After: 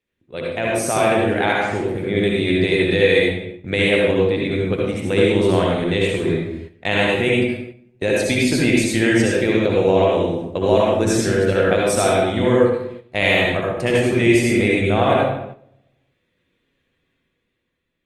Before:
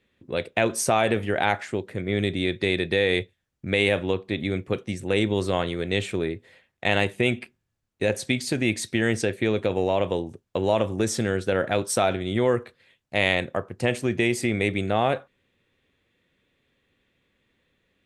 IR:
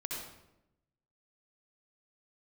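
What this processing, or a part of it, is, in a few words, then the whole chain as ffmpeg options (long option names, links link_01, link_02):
speakerphone in a meeting room: -filter_complex "[1:a]atrim=start_sample=2205[link_01];[0:a][link_01]afir=irnorm=-1:irlink=0,dynaudnorm=framelen=110:gausssize=17:maxgain=7.5dB,agate=range=-8dB:threshold=-33dB:ratio=16:detection=peak" -ar 48000 -c:a libopus -b:a 32k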